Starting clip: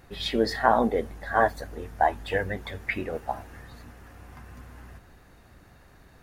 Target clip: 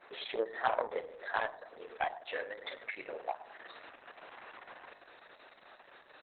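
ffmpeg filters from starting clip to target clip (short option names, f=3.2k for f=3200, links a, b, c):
-filter_complex "[0:a]asplit=2[a][b];[b]adelay=36,volume=-10.5dB[c];[a][c]amix=inputs=2:normalize=0,asplit=2[d][e];[e]adelay=104,lowpass=f=1.5k:p=1,volume=-10dB,asplit=2[f][g];[g]adelay=104,lowpass=f=1.5k:p=1,volume=0.3,asplit=2[h][i];[i]adelay=104,lowpass=f=1.5k:p=1,volume=0.3[j];[d][f][h][j]amix=inputs=4:normalize=0,aeval=exprs='0.668*(cos(1*acos(clip(val(0)/0.668,-1,1)))-cos(1*PI/2))+0.0596*(cos(7*acos(clip(val(0)/0.668,-1,1)))-cos(7*PI/2))':c=same,acrossover=split=3600[k][l];[l]acompressor=threshold=-50dB:ratio=4:attack=1:release=60[m];[k][m]amix=inputs=2:normalize=0,highpass=f=420:w=0.5412,highpass=f=420:w=1.3066,asetnsamples=n=441:p=0,asendcmd='0.9 equalizer g 2',equalizer=f=3.6k:t=o:w=1.2:g=-5.5,asoftclip=type=hard:threshold=-12dB,acompressor=threshold=-54dB:ratio=2,volume=11dB" -ar 48000 -c:a libopus -b:a 6k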